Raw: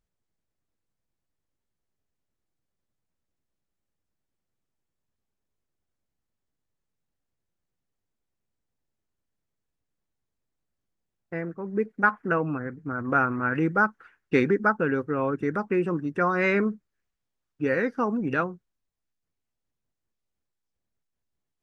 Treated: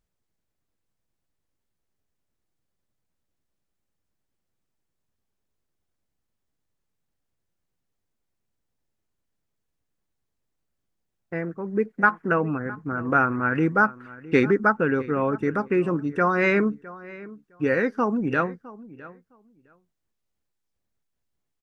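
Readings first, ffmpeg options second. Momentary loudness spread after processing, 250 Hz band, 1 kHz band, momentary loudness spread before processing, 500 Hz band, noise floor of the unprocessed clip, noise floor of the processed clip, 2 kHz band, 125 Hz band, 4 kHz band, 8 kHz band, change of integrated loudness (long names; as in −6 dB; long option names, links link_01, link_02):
19 LU, +2.5 dB, +2.5 dB, 10 LU, +2.5 dB, −83 dBFS, −79 dBFS, +2.5 dB, +2.5 dB, +2.5 dB, can't be measured, +2.5 dB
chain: -filter_complex "[0:a]asplit=2[link_01][link_02];[link_02]adelay=660,lowpass=frequency=2800:poles=1,volume=-18.5dB,asplit=2[link_03][link_04];[link_04]adelay=660,lowpass=frequency=2800:poles=1,volume=0.16[link_05];[link_01][link_03][link_05]amix=inputs=3:normalize=0,volume=2.5dB"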